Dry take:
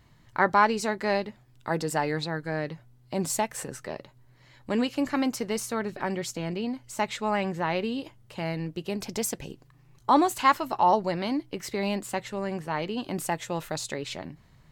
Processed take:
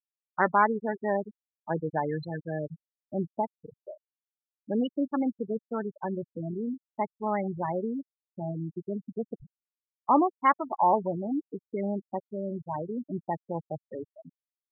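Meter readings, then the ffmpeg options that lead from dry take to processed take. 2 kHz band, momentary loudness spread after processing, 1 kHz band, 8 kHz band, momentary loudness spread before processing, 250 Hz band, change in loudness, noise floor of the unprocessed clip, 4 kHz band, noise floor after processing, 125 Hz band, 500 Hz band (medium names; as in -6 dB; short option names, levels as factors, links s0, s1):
-5.5 dB, 15 LU, -2.0 dB, under -40 dB, 14 LU, -1.5 dB, -2.0 dB, -58 dBFS, under -15 dB, under -85 dBFS, -2.0 dB, -2.0 dB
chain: -af "aemphasis=mode=reproduction:type=50fm,afftfilt=real='re*gte(hypot(re,im),0.112)':imag='im*gte(hypot(re,im),0.112)':win_size=1024:overlap=0.75,volume=0.841"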